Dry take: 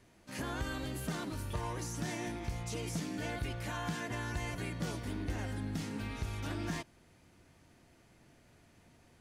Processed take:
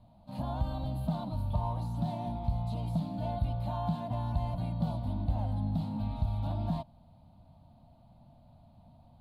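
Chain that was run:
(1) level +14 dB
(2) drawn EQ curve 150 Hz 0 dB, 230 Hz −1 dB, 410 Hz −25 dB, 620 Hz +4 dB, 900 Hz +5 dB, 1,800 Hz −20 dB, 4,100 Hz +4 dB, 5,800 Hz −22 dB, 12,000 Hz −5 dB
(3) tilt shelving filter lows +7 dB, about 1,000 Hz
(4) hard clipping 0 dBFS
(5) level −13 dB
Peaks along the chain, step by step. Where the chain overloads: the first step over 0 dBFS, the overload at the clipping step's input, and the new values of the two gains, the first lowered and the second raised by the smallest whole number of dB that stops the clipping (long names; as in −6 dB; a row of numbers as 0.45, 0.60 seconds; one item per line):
−12.5, −12.0, −5.5, −5.5, −18.5 dBFS
no step passes full scale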